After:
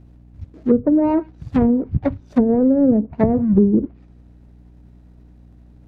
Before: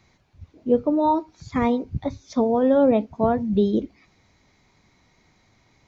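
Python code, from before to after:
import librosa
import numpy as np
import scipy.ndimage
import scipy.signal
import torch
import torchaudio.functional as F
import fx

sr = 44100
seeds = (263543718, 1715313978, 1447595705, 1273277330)

y = scipy.signal.medfilt(x, 41)
y = fx.env_lowpass_down(y, sr, base_hz=320.0, full_db=-17.0)
y = fx.add_hum(y, sr, base_hz=60, snr_db=27)
y = y * librosa.db_to_amplitude(8.0)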